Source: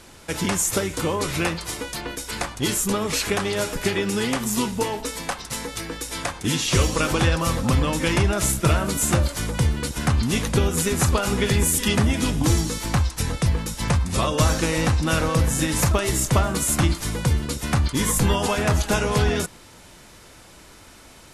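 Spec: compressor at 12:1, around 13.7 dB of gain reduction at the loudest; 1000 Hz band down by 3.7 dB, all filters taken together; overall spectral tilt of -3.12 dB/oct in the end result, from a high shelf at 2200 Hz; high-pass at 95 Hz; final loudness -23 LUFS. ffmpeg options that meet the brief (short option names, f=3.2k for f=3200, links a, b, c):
-af "highpass=95,equalizer=f=1k:t=o:g=-7,highshelf=f=2.2k:g=9,acompressor=threshold=-25dB:ratio=12,volume=5dB"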